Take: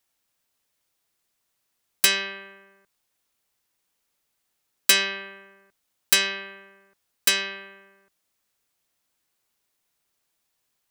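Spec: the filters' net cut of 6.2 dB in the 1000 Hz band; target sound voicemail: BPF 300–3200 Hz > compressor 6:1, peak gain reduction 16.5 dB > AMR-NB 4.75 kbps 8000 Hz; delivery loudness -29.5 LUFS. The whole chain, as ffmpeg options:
-af "highpass=300,lowpass=3.2k,equalizer=f=1k:t=o:g=-7.5,acompressor=threshold=-37dB:ratio=6,volume=14.5dB" -ar 8000 -c:a libopencore_amrnb -b:a 4750

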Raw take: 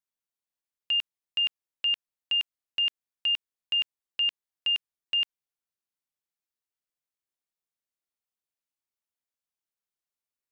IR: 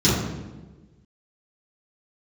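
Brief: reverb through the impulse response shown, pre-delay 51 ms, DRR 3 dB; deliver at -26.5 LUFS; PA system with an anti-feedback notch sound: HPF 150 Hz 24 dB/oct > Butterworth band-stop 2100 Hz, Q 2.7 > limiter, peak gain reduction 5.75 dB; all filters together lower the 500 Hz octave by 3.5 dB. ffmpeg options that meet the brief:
-filter_complex "[0:a]equalizer=f=500:t=o:g=-4.5,asplit=2[a][b];[1:a]atrim=start_sample=2205,adelay=51[c];[b][c]afir=irnorm=-1:irlink=0,volume=-21.5dB[d];[a][d]amix=inputs=2:normalize=0,highpass=f=150:w=0.5412,highpass=f=150:w=1.3066,asuperstop=centerf=2100:order=8:qfactor=2.7,volume=2.5dB,alimiter=limit=-20.5dB:level=0:latency=1"

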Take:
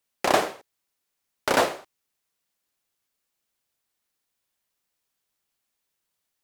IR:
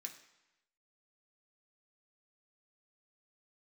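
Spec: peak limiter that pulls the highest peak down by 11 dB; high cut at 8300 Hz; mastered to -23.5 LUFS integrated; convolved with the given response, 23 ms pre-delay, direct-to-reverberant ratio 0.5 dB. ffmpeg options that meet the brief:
-filter_complex "[0:a]lowpass=8.3k,alimiter=limit=-17.5dB:level=0:latency=1,asplit=2[a][b];[1:a]atrim=start_sample=2205,adelay=23[c];[b][c]afir=irnorm=-1:irlink=0,volume=4dB[d];[a][d]amix=inputs=2:normalize=0,volume=6.5dB"

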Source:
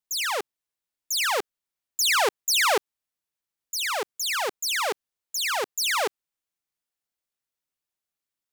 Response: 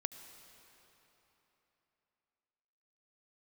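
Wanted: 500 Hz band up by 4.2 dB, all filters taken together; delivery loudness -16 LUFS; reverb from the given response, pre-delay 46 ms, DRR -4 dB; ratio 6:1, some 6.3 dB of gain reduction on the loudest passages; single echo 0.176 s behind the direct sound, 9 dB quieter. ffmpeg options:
-filter_complex "[0:a]equalizer=f=500:t=o:g=5,acompressor=threshold=-23dB:ratio=6,aecho=1:1:176:0.355,asplit=2[a][b];[1:a]atrim=start_sample=2205,adelay=46[c];[b][c]afir=irnorm=-1:irlink=0,volume=5dB[d];[a][d]amix=inputs=2:normalize=0,volume=5.5dB"

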